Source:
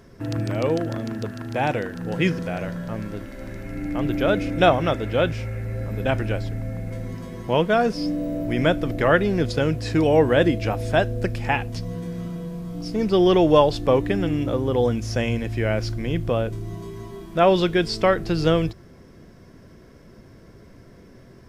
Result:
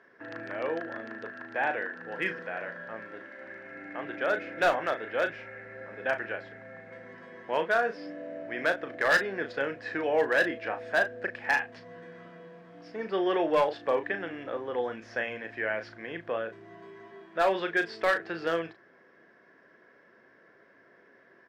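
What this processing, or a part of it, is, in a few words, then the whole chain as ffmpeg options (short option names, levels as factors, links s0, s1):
megaphone: -filter_complex "[0:a]highpass=470,lowpass=2500,equalizer=f=1700:t=o:w=0.38:g=12,asoftclip=type=hard:threshold=0.266,asplit=2[s0][s1];[s1]adelay=36,volume=0.376[s2];[s0][s2]amix=inputs=2:normalize=0,volume=0.473"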